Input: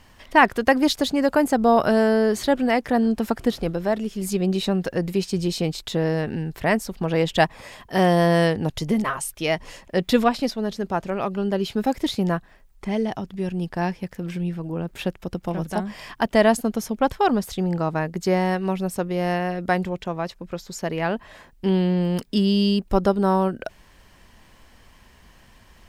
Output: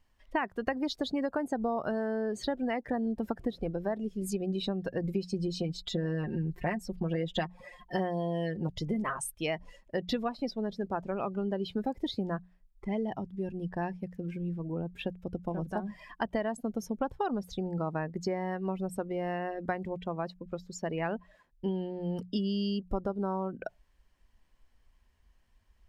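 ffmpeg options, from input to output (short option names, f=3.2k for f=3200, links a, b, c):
-filter_complex "[0:a]asettb=1/sr,asplit=3[a][b][c];[a]atrim=end=5.034[d];[b]atrim=start=5.03:end=8.68,asetpts=PTS-STARTPTS,afade=t=in:d=0.004:c=qsin,afade=t=out:st=3.646:d=0.004:c=qsin,aecho=1:1:5.6:0.68,atrim=end_sample=160965[e];[c]atrim=start=8.676[f];[d][e]acrossfade=d=0.004:c1=hsin:c2=qsin[g];[g][f]acrossfade=d=0.004:c1=qsin:c2=hsin,acompressor=threshold=-21dB:ratio=12,afftdn=nr=17:nf=-35,bandreject=f=60:t=h:w=6,bandreject=f=120:t=h:w=6,bandreject=f=180:t=h:w=6,volume=-6dB"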